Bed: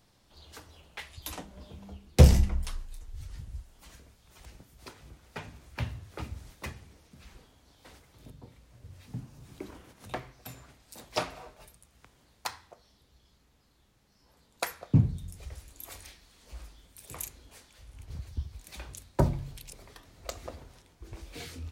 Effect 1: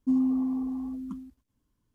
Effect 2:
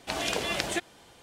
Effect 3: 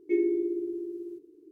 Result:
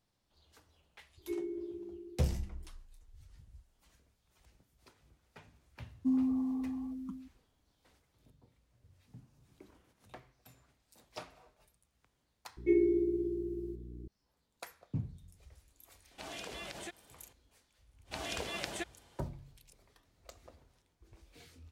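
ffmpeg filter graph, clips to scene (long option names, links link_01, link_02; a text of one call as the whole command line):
ffmpeg -i bed.wav -i cue0.wav -i cue1.wav -i cue2.wav -filter_complex "[3:a]asplit=2[link_01][link_02];[2:a]asplit=2[link_03][link_04];[0:a]volume=-15dB[link_05];[link_02]aeval=exprs='val(0)+0.00631*(sin(2*PI*60*n/s)+sin(2*PI*2*60*n/s)/2+sin(2*PI*3*60*n/s)/3+sin(2*PI*4*60*n/s)/4+sin(2*PI*5*60*n/s)/5)':channel_layout=same[link_06];[link_03]acompressor=threshold=-32dB:ratio=2:attack=0.67:release=94:knee=1:detection=peak[link_07];[link_01]atrim=end=1.51,asetpts=PTS-STARTPTS,volume=-12.5dB,afade=type=in:duration=0.004:curve=hsin,afade=type=out:start_time=1.506:duration=0.004:curve=hsin,adelay=1180[link_08];[1:a]atrim=end=1.94,asetpts=PTS-STARTPTS,volume=-5.5dB,afade=type=in:duration=0.004:curve=hsin,afade=type=out:start_time=1.936:duration=0.004:curve=hsin,adelay=5980[link_09];[link_06]atrim=end=1.51,asetpts=PTS-STARTPTS,volume=-1.5dB,afade=type=in:duration=0.004:curve=hsin,afade=type=out:start_time=1.506:duration=0.004:curve=hsin,adelay=12570[link_10];[link_07]atrim=end=1.22,asetpts=PTS-STARTPTS,volume=-10dB,afade=type=in:duration=0.004:curve=hsin,afade=type=out:start_time=1.216:duration=0.004:curve=hsin,adelay=16110[link_11];[link_04]atrim=end=1.22,asetpts=PTS-STARTPTS,volume=-9.5dB,afade=type=in:duration=0.05,afade=type=out:start_time=1.17:duration=0.05,adelay=18040[link_12];[link_05][link_08][link_09][link_10][link_11][link_12]amix=inputs=6:normalize=0" out.wav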